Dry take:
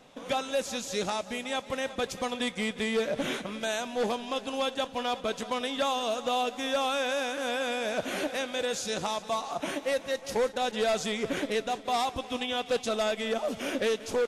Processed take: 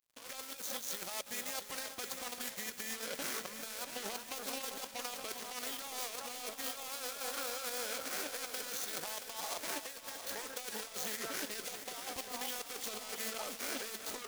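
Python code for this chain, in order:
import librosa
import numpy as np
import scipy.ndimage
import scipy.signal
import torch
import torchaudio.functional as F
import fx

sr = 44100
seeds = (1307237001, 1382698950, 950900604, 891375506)

p1 = scipy.signal.medfilt(x, 15)
p2 = fx.formant_shift(p1, sr, semitones=-2)
p3 = fx.volume_shaper(p2, sr, bpm=156, per_beat=1, depth_db=-15, release_ms=163.0, shape='fast start')
p4 = p2 + F.gain(torch.from_numpy(p3), 0.0).numpy()
p5 = scipy.signal.lfilter([1.0, -0.97], [1.0], p4)
p6 = p5 + fx.echo_alternate(p5, sr, ms=393, hz=1500.0, feedback_pct=50, wet_db=-9.5, dry=0)
p7 = fx.over_compress(p6, sr, threshold_db=-45.0, ratio=-1.0)
p8 = np.sign(p7) * np.maximum(np.abs(p7) - 10.0 ** (-55.0 / 20.0), 0.0)
p9 = fx.echo_crushed(p8, sr, ms=676, feedback_pct=55, bits=10, wet_db=-9)
y = F.gain(torch.from_numpy(p9), 5.0).numpy()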